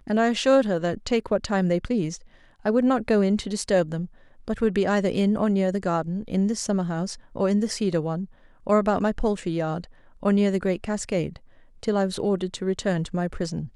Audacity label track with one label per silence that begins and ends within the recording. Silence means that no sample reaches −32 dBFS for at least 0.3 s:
2.160000	2.660000	silence
4.050000	4.480000	silence
8.250000	8.670000	silence
9.840000	10.230000	silence
11.360000	11.830000	silence